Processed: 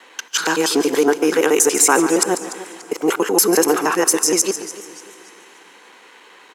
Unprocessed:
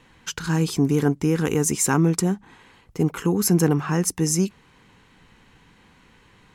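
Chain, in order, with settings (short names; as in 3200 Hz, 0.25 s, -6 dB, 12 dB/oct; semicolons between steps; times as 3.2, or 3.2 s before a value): local time reversal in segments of 94 ms; HPF 370 Hz 24 dB/oct; on a send: echo 0.143 s -14.5 dB; on the sum: plate-style reverb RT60 3.5 s, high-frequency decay 0.9×, DRR 19.5 dB; in parallel at -0.5 dB: limiter -18 dBFS, peak gain reduction 8.5 dB; on the sum: warbling echo 0.292 s, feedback 37%, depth 111 cents, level -16 dB; gain +5.5 dB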